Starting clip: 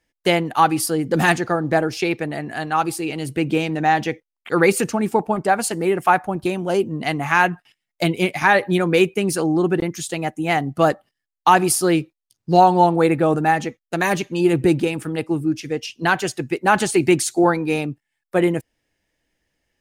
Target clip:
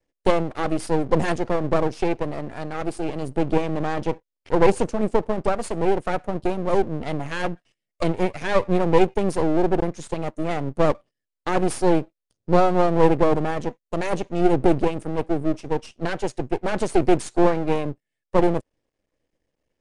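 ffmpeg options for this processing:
ffmpeg -i in.wav -af "lowshelf=frequency=700:width_type=q:width=3:gain=7.5,aeval=exprs='max(val(0),0)':channel_layout=same,aresample=22050,aresample=44100,volume=-7dB" out.wav

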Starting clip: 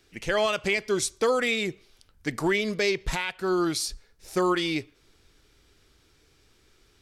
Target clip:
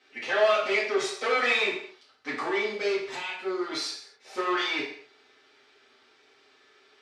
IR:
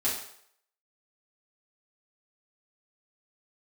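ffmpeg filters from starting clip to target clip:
-filter_complex "[0:a]asettb=1/sr,asplit=3[link_01][link_02][link_03];[link_01]atrim=end=0.974[link_04];[link_02]atrim=start=0.97:end=1.66,asetpts=PTS-STARTPTS,afade=type=in:duration=0.004:curve=qsin,afade=type=out:start_time=0.686:duration=0.004:curve=qsin,aecho=1:1:1.6:0.99,atrim=end_sample=30429[link_05];[link_03]atrim=start=1.656[link_06];[link_04][link_05]acrossfade=duration=0.004:curve1=hsin:curve2=qsin[link_07];[link_07][link_06]acrossfade=duration=0.004:curve1=qsin:curve2=hsin,asettb=1/sr,asplit=3[link_08][link_09][link_10];[link_08]atrim=end=2.484[link_11];[link_09]atrim=start=2.48:end=3.71,asetpts=PTS-STARTPTS,afade=type=in:duration=0.004:curve=qsin,afade=type=out:start_time=1.226:duration=0.004:curve=qsin,equalizer=frequency=1300:width=0.4:gain=-9[link_12];[link_10]atrim=start=3.706[link_13];[link_11][link_12]acrossfade=duration=0.004:curve1=hsin:curve2=qsin[link_14];[link_14][link_13]acrossfade=duration=0.004:curve1=qsin:curve2=hsin,asoftclip=type=tanh:threshold=-26dB,highpass=510,lowpass=3400[link_15];[1:a]atrim=start_sample=2205,afade=type=out:start_time=0.33:duration=0.01,atrim=end_sample=14994[link_16];[link_15][link_16]afir=irnorm=-1:irlink=0"

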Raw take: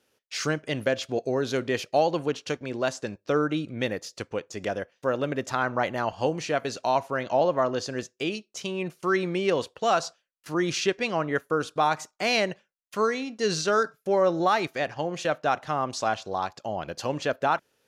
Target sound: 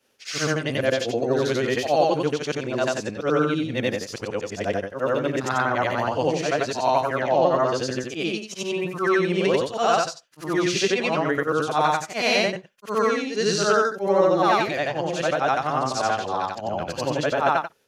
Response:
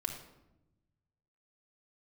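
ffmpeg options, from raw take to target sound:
-af "afftfilt=real='re':imag='-im':win_size=8192:overlap=0.75,volume=8.5dB"

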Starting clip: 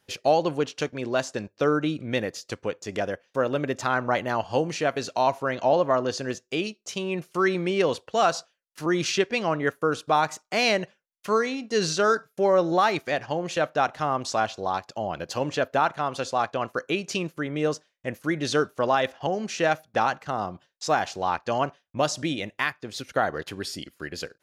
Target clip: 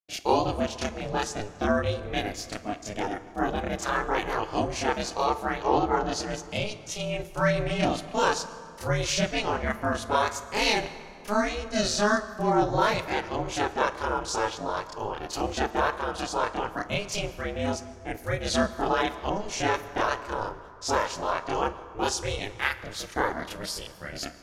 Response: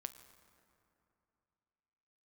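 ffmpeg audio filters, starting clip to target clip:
-filter_complex "[0:a]agate=range=-33dB:threshold=-51dB:ratio=3:detection=peak,aeval=exprs='val(0)*sin(2*PI*210*n/s)':channel_layout=same,asplit=2[link_01][link_02];[1:a]atrim=start_sample=2205,highshelf=frequency=4700:gain=9,adelay=29[link_03];[link_02][link_03]afir=irnorm=-1:irlink=0,volume=5.5dB[link_04];[link_01][link_04]amix=inputs=2:normalize=0,volume=-3.5dB"

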